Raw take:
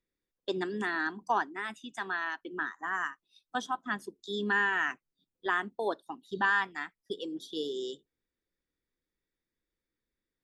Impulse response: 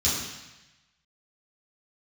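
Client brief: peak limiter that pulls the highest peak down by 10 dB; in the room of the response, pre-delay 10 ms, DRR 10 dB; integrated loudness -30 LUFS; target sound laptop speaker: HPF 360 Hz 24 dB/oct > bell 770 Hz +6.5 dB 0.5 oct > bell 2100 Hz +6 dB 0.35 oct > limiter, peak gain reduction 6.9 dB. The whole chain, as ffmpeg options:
-filter_complex "[0:a]alimiter=level_in=2.5dB:limit=-24dB:level=0:latency=1,volume=-2.5dB,asplit=2[a][b];[1:a]atrim=start_sample=2205,adelay=10[c];[b][c]afir=irnorm=-1:irlink=0,volume=-21dB[d];[a][d]amix=inputs=2:normalize=0,highpass=f=360:w=0.5412,highpass=f=360:w=1.3066,equalizer=f=770:t=o:w=0.5:g=6.5,equalizer=f=2.1k:t=o:w=0.35:g=6,volume=9dB,alimiter=limit=-19dB:level=0:latency=1"

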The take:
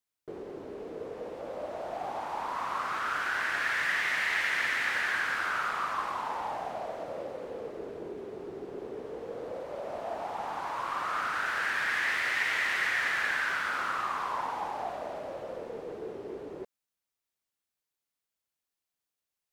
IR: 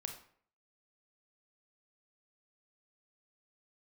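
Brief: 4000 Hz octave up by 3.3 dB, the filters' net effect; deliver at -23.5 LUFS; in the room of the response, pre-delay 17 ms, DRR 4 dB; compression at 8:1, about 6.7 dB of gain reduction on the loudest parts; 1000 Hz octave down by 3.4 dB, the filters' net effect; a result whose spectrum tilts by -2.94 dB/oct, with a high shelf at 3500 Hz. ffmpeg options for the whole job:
-filter_complex "[0:a]equalizer=f=1k:t=o:g=-4.5,highshelf=f=3.5k:g=-5,equalizer=f=4k:t=o:g=8,acompressor=threshold=-33dB:ratio=8,asplit=2[a][b];[1:a]atrim=start_sample=2205,adelay=17[c];[b][c]afir=irnorm=-1:irlink=0,volume=-2dB[d];[a][d]amix=inputs=2:normalize=0,volume=12.5dB"

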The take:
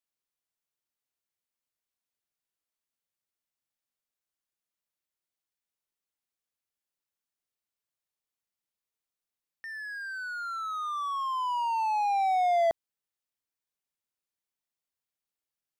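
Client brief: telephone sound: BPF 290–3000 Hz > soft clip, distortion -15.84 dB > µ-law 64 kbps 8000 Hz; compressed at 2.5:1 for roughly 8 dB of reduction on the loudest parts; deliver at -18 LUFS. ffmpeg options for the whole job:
-af "acompressor=threshold=-35dB:ratio=2.5,highpass=290,lowpass=3k,asoftclip=threshold=-34.5dB,volume=20.5dB" -ar 8000 -c:a pcm_mulaw

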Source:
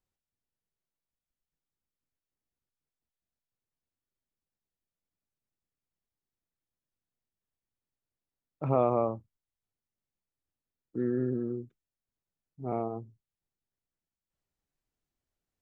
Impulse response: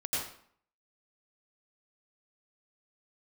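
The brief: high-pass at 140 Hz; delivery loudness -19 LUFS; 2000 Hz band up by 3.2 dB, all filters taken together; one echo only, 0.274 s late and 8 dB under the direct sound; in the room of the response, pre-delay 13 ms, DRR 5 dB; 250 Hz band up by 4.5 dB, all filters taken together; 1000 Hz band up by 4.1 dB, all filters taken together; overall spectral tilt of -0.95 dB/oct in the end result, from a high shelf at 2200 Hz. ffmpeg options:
-filter_complex "[0:a]highpass=140,equalizer=f=250:t=o:g=5.5,equalizer=f=1k:t=o:g=5.5,equalizer=f=2k:t=o:g=5.5,highshelf=f=2.2k:g=-6.5,aecho=1:1:274:0.398,asplit=2[a][b];[1:a]atrim=start_sample=2205,adelay=13[c];[b][c]afir=irnorm=-1:irlink=0,volume=-10.5dB[d];[a][d]amix=inputs=2:normalize=0,volume=8.5dB"

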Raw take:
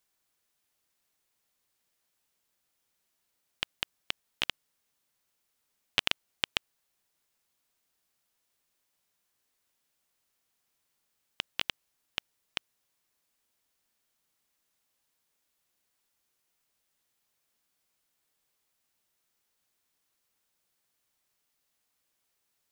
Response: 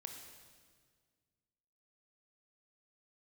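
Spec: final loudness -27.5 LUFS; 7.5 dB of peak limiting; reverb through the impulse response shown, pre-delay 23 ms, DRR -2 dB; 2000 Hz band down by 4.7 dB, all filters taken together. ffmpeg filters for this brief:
-filter_complex "[0:a]equalizer=f=2k:t=o:g=-6.5,alimiter=limit=-14dB:level=0:latency=1,asplit=2[a][b];[1:a]atrim=start_sample=2205,adelay=23[c];[b][c]afir=irnorm=-1:irlink=0,volume=6dB[d];[a][d]amix=inputs=2:normalize=0,volume=12.5dB"

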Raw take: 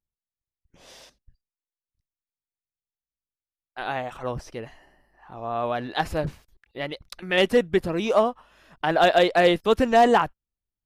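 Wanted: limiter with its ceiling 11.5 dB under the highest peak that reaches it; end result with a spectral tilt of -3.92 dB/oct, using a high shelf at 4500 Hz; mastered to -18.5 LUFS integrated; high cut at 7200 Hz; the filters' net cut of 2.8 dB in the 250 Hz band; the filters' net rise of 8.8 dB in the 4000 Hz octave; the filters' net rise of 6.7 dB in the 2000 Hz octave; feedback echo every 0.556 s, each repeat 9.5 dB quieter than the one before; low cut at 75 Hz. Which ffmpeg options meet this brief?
-af "highpass=75,lowpass=7.2k,equalizer=f=250:t=o:g=-4,equalizer=f=2k:t=o:g=5.5,equalizer=f=4k:t=o:g=6,highshelf=f=4.5k:g=7.5,alimiter=limit=-13.5dB:level=0:latency=1,aecho=1:1:556|1112|1668|2224:0.335|0.111|0.0365|0.012,volume=8dB"

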